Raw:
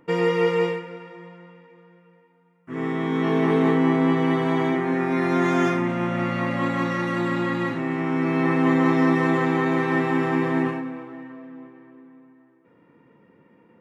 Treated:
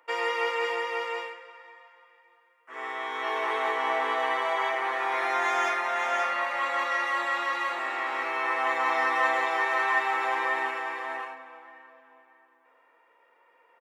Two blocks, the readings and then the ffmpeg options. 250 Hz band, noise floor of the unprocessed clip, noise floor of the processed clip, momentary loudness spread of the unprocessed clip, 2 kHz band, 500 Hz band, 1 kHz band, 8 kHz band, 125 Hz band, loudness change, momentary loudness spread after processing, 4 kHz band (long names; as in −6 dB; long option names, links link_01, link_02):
−25.5 dB, −58 dBFS, −64 dBFS, 14 LU, +2.0 dB, −8.5 dB, +1.0 dB, can't be measured, below −40 dB, −5.0 dB, 10 LU, +1.5 dB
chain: -af "highpass=frequency=630:width=0.5412,highpass=frequency=630:width=1.3066,aecho=1:1:540:0.631"